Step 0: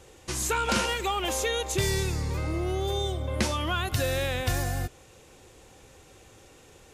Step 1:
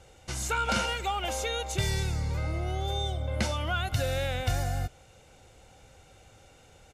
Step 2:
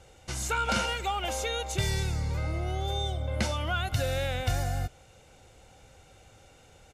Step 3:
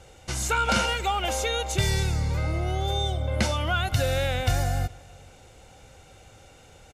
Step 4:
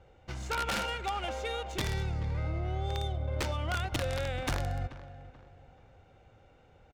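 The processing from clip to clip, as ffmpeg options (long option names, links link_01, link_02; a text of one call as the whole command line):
ffmpeg -i in.wav -af "highshelf=frequency=9500:gain=-8.5,aecho=1:1:1.4:0.5,volume=-3dB" out.wav
ffmpeg -i in.wav -af anull out.wav
ffmpeg -i in.wav -filter_complex "[0:a]asplit=2[link_01][link_02];[link_02]adelay=425.7,volume=-24dB,highshelf=frequency=4000:gain=-9.58[link_03];[link_01][link_03]amix=inputs=2:normalize=0,volume=4.5dB" out.wav
ffmpeg -i in.wav -filter_complex "[0:a]aeval=exprs='(mod(6.31*val(0)+1,2)-1)/6.31':channel_layout=same,asplit=2[link_01][link_02];[link_02]adelay=433,lowpass=frequency=4600:poles=1,volume=-15dB,asplit=2[link_03][link_04];[link_04]adelay=433,lowpass=frequency=4600:poles=1,volume=0.38,asplit=2[link_05][link_06];[link_06]adelay=433,lowpass=frequency=4600:poles=1,volume=0.38[link_07];[link_01][link_03][link_05][link_07]amix=inputs=4:normalize=0,adynamicsmooth=sensitivity=2.5:basefreq=2400,volume=-7.5dB" out.wav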